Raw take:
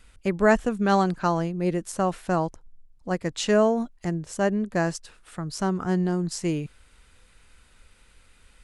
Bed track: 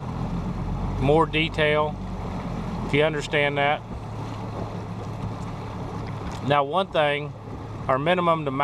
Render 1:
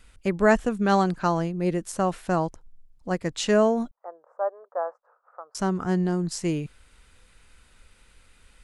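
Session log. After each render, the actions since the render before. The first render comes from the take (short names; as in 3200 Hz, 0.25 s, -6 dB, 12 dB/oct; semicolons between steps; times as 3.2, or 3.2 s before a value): 3.91–5.55 elliptic band-pass 510–1300 Hz, stop band 50 dB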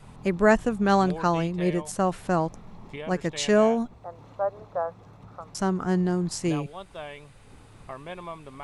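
add bed track -17.5 dB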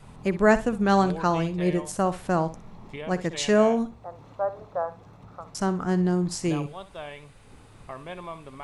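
flutter echo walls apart 10.5 m, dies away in 0.26 s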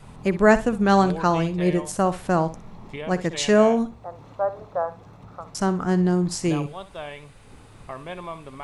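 gain +3 dB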